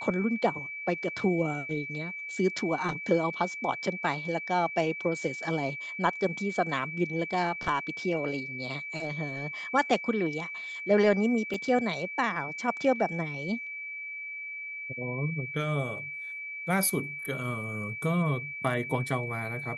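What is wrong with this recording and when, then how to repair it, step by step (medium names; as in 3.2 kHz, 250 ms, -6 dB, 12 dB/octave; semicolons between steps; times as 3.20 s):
whine 2.3 kHz -36 dBFS
11.54 s: dropout 2.6 ms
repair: band-stop 2.3 kHz, Q 30; interpolate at 11.54 s, 2.6 ms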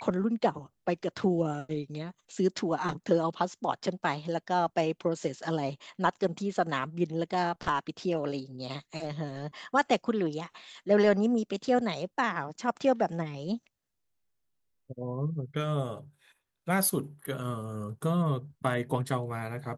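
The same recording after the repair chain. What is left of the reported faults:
nothing left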